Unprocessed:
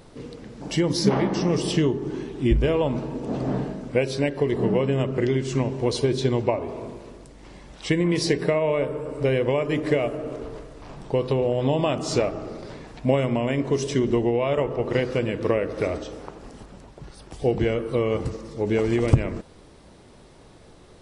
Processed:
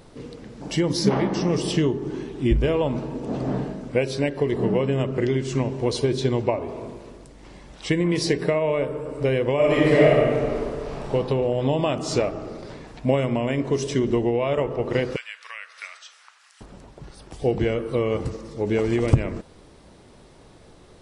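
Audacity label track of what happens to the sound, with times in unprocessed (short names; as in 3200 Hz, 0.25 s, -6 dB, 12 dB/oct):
9.550000	11.110000	reverb throw, RT60 1.8 s, DRR -6.5 dB
15.160000	16.610000	HPF 1400 Hz 24 dB/oct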